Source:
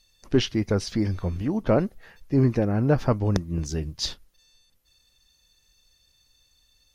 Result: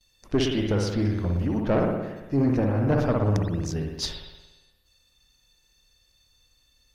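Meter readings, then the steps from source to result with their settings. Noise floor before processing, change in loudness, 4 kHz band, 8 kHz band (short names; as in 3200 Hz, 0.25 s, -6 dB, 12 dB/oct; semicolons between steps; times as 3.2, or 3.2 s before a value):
-65 dBFS, -0.5 dB, -1.0 dB, -1.5 dB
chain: spring tank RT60 1.1 s, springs 57 ms, chirp 75 ms, DRR 1 dB; gate with hold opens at -55 dBFS; tube stage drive 15 dB, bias 0.4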